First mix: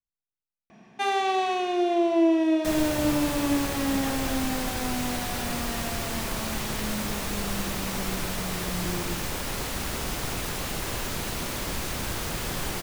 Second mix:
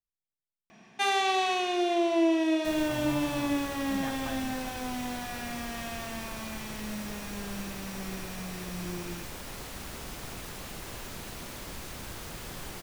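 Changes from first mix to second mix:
first sound: add tilt shelf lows -4.5 dB, about 1400 Hz; second sound -10.0 dB

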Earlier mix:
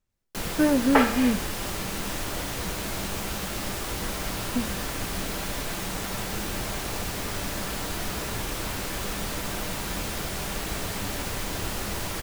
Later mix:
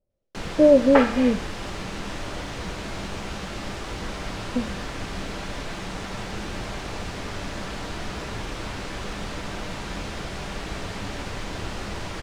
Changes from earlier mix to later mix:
speech: add synth low-pass 570 Hz, resonance Q 5.2; master: add air absorption 93 m

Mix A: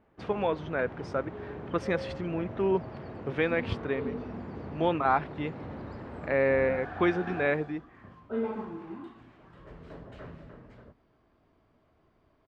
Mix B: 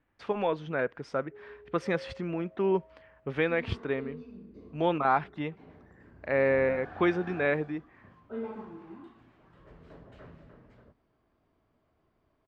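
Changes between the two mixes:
first sound: muted; second sound -5.5 dB

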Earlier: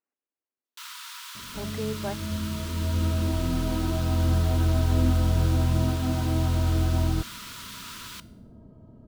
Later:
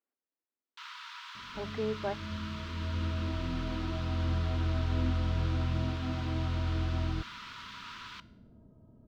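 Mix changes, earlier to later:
second sound -8.0 dB; master: add air absorption 220 m

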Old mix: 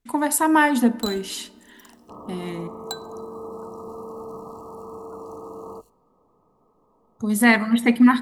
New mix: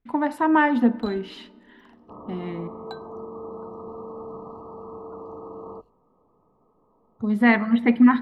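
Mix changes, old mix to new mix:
first sound: send off; master: add air absorption 360 m

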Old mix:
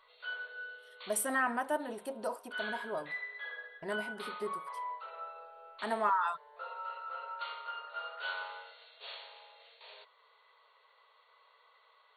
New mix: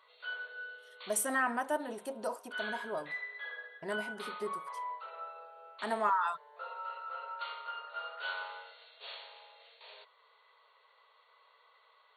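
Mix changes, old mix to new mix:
speech: add bell 6500 Hz +8.5 dB 0.39 oct; master: add HPF 83 Hz

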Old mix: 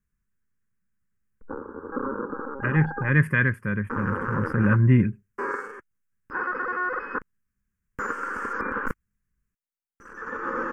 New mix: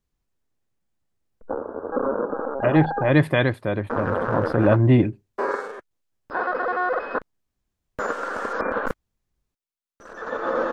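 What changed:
speech: add thirty-one-band EQ 200 Hz -7 dB, 315 Hz +11 dB, 800 Hz +11 dB, 1600 Hz -6 dB, 4000 Hz +9 dB; master: remove fixed phaser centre 1600 Hz, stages 4

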